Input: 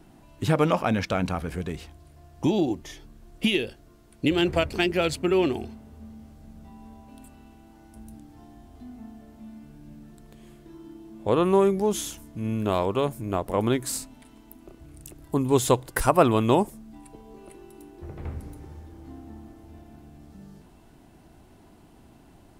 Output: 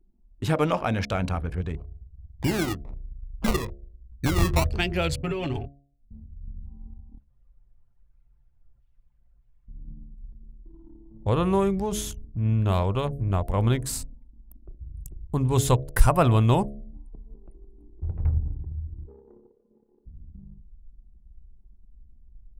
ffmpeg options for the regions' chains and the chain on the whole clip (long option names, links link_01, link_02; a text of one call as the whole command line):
ffmpeg -i in.wav -filter_complex "[0:a]asettb=1/sr,asplit=3[link_01][link_02][link_03];[link_01]atrim=end=1.774[link_04];[link_02]atrim=start=1.77:end=4.71,asetpts=PTS-STARTPTS,afade=type=in:duration=0.004:curve=qsin,afade=type=out:start_time=2.936:duration=0.004:curve=qsin,acrusher=samples=23:mix=1:aa=0.000001:lfo=1:lforange=13.8:lforate=1.2,aeval=exprs='val(0)+0.00224*(sin(2*PI*60*n/s)+sin(2*PI*2*60*n/s)/2+sin(2*PI*3*60*n/s)/3+sin(2*PI*4*60*n/s)/4+sin(2*PI*5*60*n/s)/5)':channel_layout=same[link_05];[link_03]atrim=start=4.706[link_06];[link_04][link_05]acrossfade=duration=0.004:curve1=hsin:curve2=qsin[link_07];[link_07][link_06]acrossfade=duration=0.004:curve1=qsin:curve2=hsin,asettb=1/sr,asplit=3[link_08][link_09][link_10];[link_08]atrim=end=5.224[link_11];[link_09]atrim=start=5.22:end=6.11,asetpts=PTS-STARTPTS,afade=type=in:duration=0.004:curve=qsin,afade=type=out:start_time=0.886:duration=0.004:curve=qsin,agate=range=-33dB:threshold=-33dB:ratio=3:release=100:detection=peak,aecho=1:1:7.2:0.93,atrim=end_sample=39249,acompressor=threshold=-22dB:ratio=6:attack=3.2:release=140:knee=1:detection=peak[link_12];[link_10]atrim=start=6.106[link_13];[link_11][link_12]acrossfade=duration=0.004:curve1=hsin:curve2=qsin[link_14];[link_14][link_13]acrossfade=duration=0.004:curve1=qsin:curve2=hsin,asettb=1/sr,asplit=3[link_15][link_16][link_17];[link_15]atrim=end=7.184[link_18];[link_16]atrim=start=7.18:end=9.68,asetpts=PTS-STARTPTS,afade=type=in:duration=0.004:curve=qsin,afade=type=out:start_time=2.496:duration=0.004:curve=qsin,equalizer=frequency=290:width=2.6:gain=6.5,aeval=exprs='(mod(266*val(0)+1,2)-1)/266':channel_layout=same[link_19];[link_17]atrim=start=9.676[link_20];[link_18][link_19]acrossfade=duration=0.004:curve1=hsin:curve2=qsin[link_21];[link_21][link_20]acrossfade=duration=0.004:curve1=qsin:curve2=hsin,asettb=1/sr,asplit=3[link_22][link_23][link_24];[link_22]atrim=end=19.064[link_25];[link_23]atrim=start=19.06:end=20.06,asetpts=PTS-STARTPTS,afade=type=in:duration=0.004:curve=qsin,afade=type=out:start_time=0.996:duration=0.004:curve=qsin,highpass=110,aeval=exprs='val(0)+0.000355*sin(2*PI*1300*n/s)':channel_layout=same,afreqshift=140[link_26];[link_24]atrim=start=20.056[link_27];[link_25][link_26]acrossfade=duration=0.004:curve1=hsin:curve2=qsin[link_28];[link_28][link_27]acrossfade=duration=0.004:curve1=qsin:curve2=hsin,anlmdn=1,bandreject=frequency=70.03:width_type=h:width=4,bandreject=frequency=140.06:width_type=h:width=4,bandreject=frequency=210.09:width_type=h:width=4,bandreject=frequency=280.12:width_type=h:width=4,bandreject=frequency=350.15:width_type=h:width=4,bandreject=frequency=420.18:width_type=h:width=4,bandreject=frequency=490.21:width_type=h:width=4,bandreject=frequency=560.24:width_type=h:width=4,bandreject=frequency=630.27:width_type=h:width=4,bandreject=frequency=700.3:width_type=h:width=4,asubboost=boost=7:cutoff=110,volume=-1dB" out.wav